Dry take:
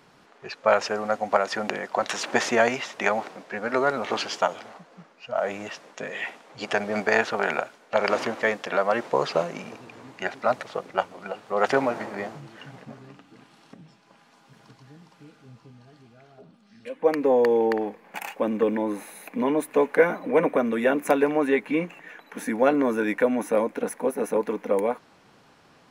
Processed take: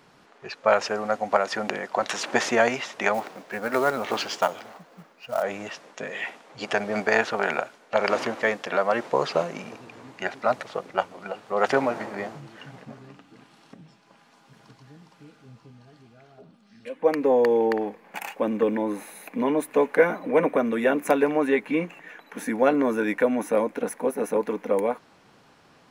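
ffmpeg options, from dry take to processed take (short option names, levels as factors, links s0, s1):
-filter_complex "[0:a]asettb=1/sr,asplit=3[s0][s1][s2];[s0]atrim=end=3.144[s3];[s1]atrim=start=3.14:end=5.43,asetpts=PTS-STARTPTS,afade=t=in:d=0.004:c=qsin,afade=t=out:st=2.286:d=0.004:c=qsin,acrusher=bits=5:mode=log:mix=0:aa=0.000001[s4];[s2]atrim=start=5.426[s5];[s3][s4]acrossfade=d=0.004:c1=hsin:c2=qsin[s6];[s6][s5]acrossfade=d=0.004:c1=qsin:c2=hsin"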